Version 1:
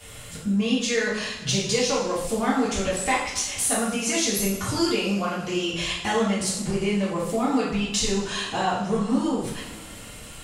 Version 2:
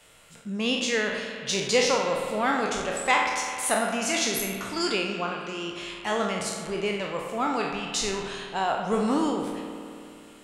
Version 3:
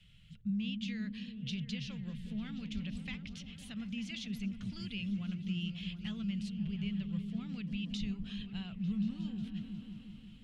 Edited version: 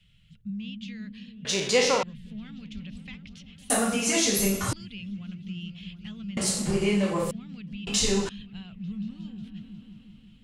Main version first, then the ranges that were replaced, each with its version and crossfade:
3
0:01.45–0:02.03: punch in from 2
0:03.70–0:04.73: punch in from 1
0:06.37–0:07.31: punch in from 1
0:07.87–0:08.29: punch in from 1

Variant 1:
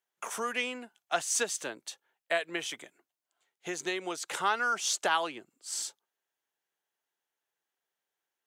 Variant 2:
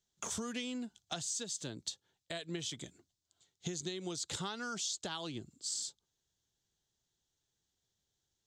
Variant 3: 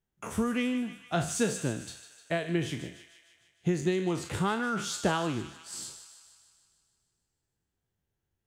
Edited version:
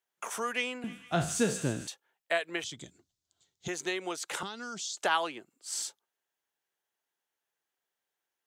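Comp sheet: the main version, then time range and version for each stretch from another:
1
0:00.84–0:01.87: punch in from 3
0:02.64–0:03.68: punch in from 2
0:04.43–0:04.97: punch in from 2

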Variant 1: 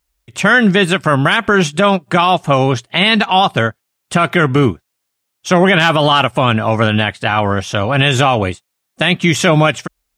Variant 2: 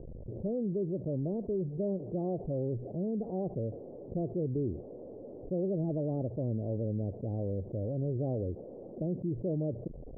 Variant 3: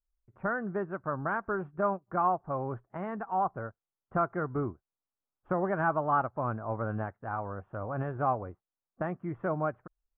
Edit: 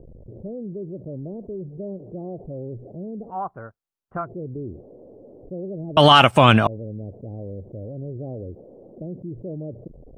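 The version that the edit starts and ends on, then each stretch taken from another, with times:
2
0:03.32–0:04.25: punch in from 3, crossfade 0.10 s
0:05.97–0:06.67: punch in from 1

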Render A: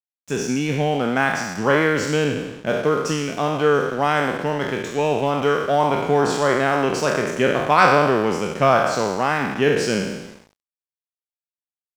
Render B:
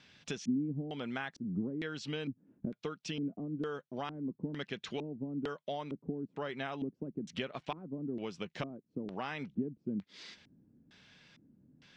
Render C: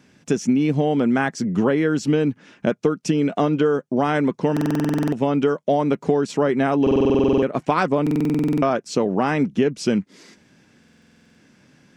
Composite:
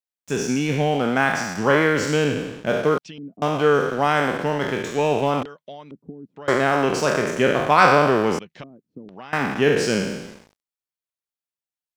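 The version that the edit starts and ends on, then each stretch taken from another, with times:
A
0:02.98–0:03.42: punch in from B
0:05.43–0:06.48: punch in from B
0:08.39–0:09.33: punch in from B
not used: C

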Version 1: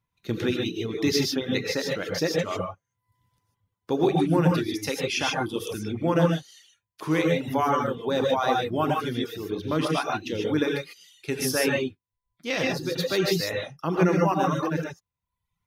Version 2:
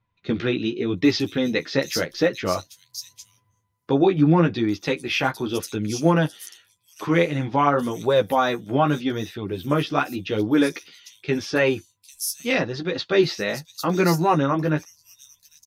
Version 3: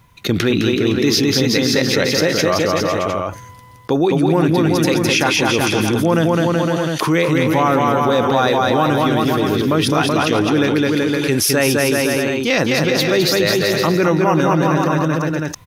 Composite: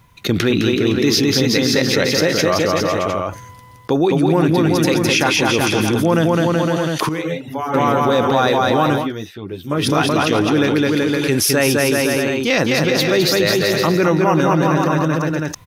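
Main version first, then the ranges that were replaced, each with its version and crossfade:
3
0:07.09–0:07.74: punch in from 1
0:09.02–0:09.79: punch in from 2, crossfade 0.16 s

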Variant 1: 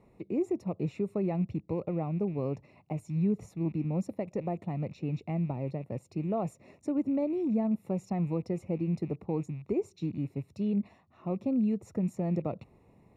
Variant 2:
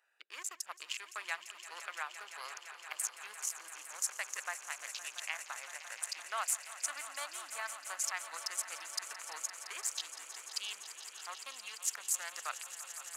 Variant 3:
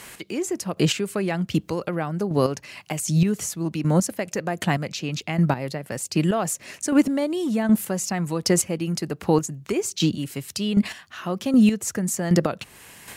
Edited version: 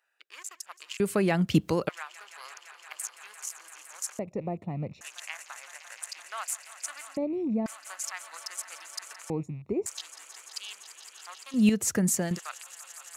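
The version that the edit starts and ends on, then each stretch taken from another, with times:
2
0:01.00–0:01.89: punch in from 3
0:04.19–0:05.01: punch in from 1
0:07.17–0:07.66: punch in from 1
0:09.30–0:09.86: punch in from 1
0:11.63–0:12.27: punch in from 3, crossfade 0.24 s

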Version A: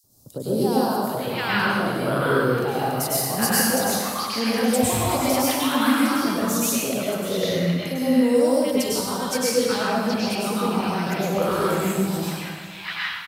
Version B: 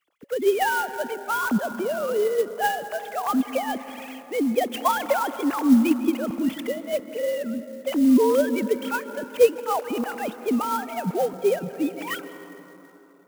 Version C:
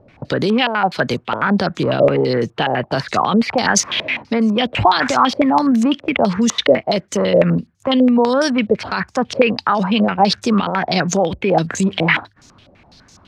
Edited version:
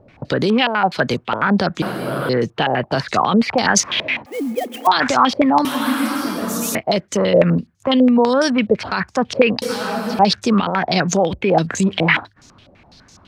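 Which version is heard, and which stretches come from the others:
C
0:01.82–0:02.29: punch in from A
0:04.26–0:04.87: punch in from B
0:05.65–0:06.75: punch in from A
0:09.62–0:10.19: punch in from A

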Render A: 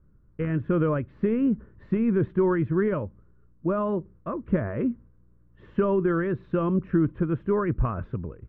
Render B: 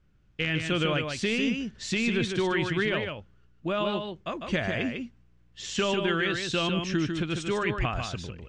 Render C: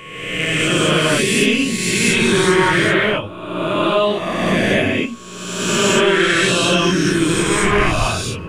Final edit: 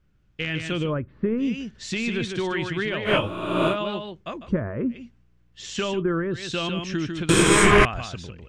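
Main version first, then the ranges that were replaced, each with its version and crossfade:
B
0:00.83–0:01.49: punch in from A, crossfade 0.24 s
0:03.09–0:03.72: punch in from C, crossfade 0.10 s
0:04.43–0:05.00: punch in from A, crossfade 0.24 s
0:05.95–0:06.38: punch in from A, crossfade 0.16 s
0:07.29–0:07.85: punch in from C

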